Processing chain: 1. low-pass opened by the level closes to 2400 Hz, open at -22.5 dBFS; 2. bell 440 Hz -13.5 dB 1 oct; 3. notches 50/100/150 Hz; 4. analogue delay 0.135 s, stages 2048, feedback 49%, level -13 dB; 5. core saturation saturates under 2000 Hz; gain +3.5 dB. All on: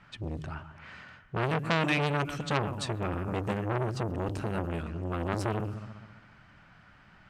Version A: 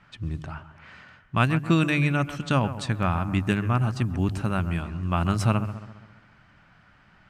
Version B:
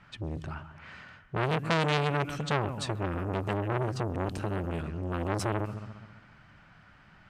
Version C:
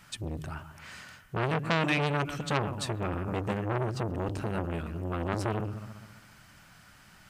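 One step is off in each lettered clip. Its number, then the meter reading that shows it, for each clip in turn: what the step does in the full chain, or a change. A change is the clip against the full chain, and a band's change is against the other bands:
5, crest factor change -6.0 dB; 3, 2 kHz band -1.5 dB; 1, 8 kHz band +2.0 dB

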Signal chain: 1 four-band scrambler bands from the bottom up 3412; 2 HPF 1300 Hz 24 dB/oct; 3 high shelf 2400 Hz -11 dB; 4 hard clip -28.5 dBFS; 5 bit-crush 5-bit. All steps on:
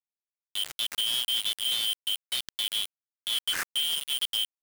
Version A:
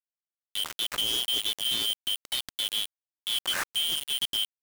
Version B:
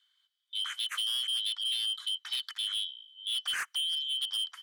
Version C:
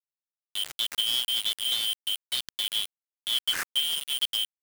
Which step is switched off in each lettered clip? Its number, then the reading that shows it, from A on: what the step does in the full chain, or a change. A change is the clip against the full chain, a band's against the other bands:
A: 2, 500 Hz band +6.5 dB; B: 5, distortion -3 dB; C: 4, distortion -8 dB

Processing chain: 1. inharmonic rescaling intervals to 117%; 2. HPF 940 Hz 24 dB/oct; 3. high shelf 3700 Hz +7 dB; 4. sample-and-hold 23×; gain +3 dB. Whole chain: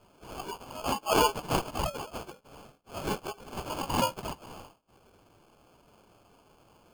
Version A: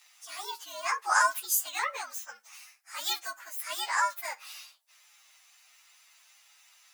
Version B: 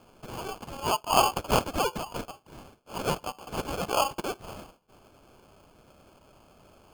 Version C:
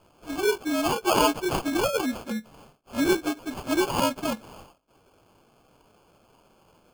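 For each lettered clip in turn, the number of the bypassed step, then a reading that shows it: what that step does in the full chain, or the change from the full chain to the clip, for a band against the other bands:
4, crest factor change +2.0 dB; 1, 250 Hz band -2.0 dB; 2, 250 Hz band +6.5 dB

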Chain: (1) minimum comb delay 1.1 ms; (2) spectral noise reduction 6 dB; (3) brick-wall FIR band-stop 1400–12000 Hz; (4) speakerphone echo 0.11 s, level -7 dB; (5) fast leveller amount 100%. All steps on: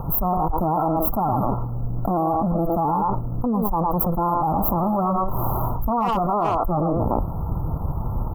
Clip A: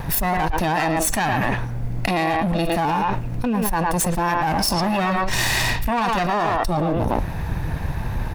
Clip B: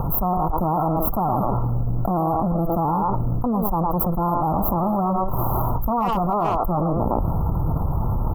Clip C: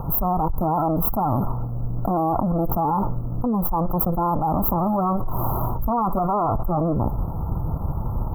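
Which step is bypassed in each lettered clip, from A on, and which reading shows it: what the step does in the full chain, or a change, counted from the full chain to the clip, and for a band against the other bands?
3, loudness change +1.0 LU; 2, 125 Hz band +2.5 dB; 4, 125 Hz band +2.0 dB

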